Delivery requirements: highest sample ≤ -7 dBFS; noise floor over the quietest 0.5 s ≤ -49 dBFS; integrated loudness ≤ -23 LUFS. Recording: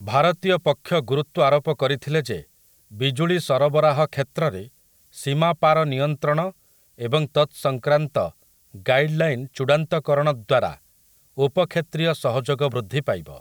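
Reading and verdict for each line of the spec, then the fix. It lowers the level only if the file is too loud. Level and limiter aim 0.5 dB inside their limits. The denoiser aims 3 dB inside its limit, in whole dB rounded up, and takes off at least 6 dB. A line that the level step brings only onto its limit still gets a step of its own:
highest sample -6.0 dBFS: fail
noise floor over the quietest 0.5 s -58 dBFS: pass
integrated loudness -22.0 LUFS: fail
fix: trim -1.5 dB

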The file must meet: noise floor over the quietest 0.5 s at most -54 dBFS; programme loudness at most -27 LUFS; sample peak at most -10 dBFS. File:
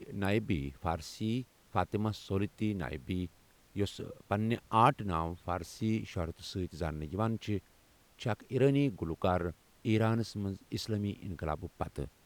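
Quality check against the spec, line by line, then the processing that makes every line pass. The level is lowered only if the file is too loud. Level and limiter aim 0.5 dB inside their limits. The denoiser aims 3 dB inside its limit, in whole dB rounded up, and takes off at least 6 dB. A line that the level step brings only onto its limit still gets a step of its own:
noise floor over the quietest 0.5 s -64 dBFS: pass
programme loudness -34.5 LUFS: pass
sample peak -11.5 dBFS: pass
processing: none needed

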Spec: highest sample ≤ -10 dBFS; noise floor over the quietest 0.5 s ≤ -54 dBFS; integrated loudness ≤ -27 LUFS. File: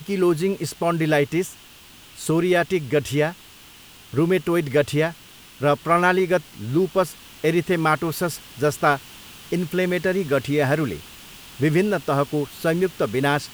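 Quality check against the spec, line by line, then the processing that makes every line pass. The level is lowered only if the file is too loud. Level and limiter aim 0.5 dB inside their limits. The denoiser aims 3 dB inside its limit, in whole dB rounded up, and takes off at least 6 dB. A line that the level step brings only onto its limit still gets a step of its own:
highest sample -4.5 dBFS: fail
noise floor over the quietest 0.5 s -46 dBFS: fail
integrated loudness -22.0 LUFS: fail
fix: noise reduction 6 dB, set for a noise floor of -46 dBFS; trim -5.5 dB; peak limiter -10.5 dBFS

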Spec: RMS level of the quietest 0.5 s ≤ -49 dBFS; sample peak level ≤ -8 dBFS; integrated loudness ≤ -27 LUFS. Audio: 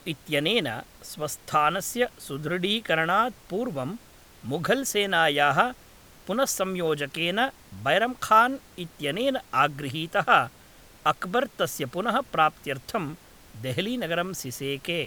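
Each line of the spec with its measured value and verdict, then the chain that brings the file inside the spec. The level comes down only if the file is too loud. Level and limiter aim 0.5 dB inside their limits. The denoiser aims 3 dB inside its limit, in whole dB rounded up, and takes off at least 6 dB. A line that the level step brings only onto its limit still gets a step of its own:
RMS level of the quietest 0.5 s -52 dBFS: pass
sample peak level -4.5 dBFS: fail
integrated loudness -25.5 LUFS: fail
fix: trim -2 dB; peak limiter -8.5 dBFS

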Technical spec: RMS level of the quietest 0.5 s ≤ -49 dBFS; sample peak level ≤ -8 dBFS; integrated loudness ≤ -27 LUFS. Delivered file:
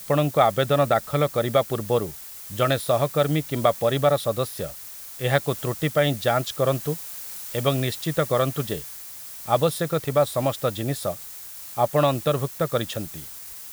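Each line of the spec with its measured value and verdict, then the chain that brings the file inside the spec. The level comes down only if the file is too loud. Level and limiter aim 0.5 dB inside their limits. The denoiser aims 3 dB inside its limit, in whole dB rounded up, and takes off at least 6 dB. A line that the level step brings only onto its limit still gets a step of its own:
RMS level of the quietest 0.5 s -39 dBFS: fail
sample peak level -4.0 dBFS: fail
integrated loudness -24.0 LUFS: fail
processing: noise reduction 10 dB, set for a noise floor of -39 dBFS; trim -3.5 dB; peak limiter -8.5 dBFS

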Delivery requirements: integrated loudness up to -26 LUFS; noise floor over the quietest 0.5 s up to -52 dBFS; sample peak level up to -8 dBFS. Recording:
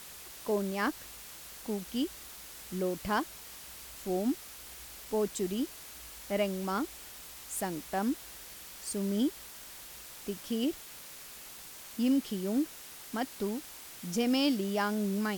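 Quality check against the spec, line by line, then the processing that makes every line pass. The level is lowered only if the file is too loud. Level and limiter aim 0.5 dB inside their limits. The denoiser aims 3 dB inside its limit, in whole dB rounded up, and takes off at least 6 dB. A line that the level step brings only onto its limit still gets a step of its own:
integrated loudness -34.0 LUFS: pass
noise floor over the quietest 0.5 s -48 dBFS: fail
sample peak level -16.0 dBFS: pass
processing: noise reduction 7 dB, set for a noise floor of -48 dBFS

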